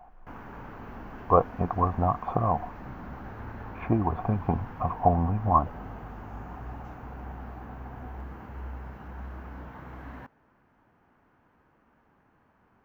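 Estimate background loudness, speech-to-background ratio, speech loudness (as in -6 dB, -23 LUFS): -42.5 LUFS, 15.5 dB, -27.0 LUFS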